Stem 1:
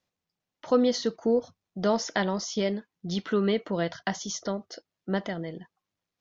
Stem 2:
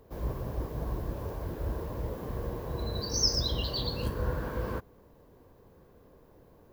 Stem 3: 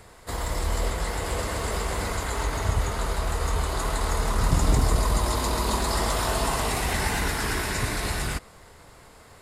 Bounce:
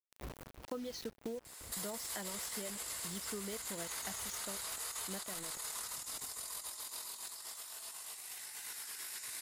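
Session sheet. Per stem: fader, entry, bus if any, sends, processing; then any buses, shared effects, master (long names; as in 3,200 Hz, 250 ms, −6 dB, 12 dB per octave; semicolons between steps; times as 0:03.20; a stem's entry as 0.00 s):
−9.5 dB, 0.00 s, no send, reverb reduction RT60 0.71 s; bit reduction 6 bits
−15.0 dB, 0.00 s, no send, parametric band 260 Hz +3 dB 0.78 octaves; bit reduction 5 bits; automatic ducking −10 dB, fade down 0.25 s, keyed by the first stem
+2.5 dB, 1.45 s, no send, first difference; compressor whose output falls as the input rises −41 dBFS, ratio −0.5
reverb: not used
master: downward compressor 6 to 1, threshold −39 dBFS, peak gain reduction 12 dB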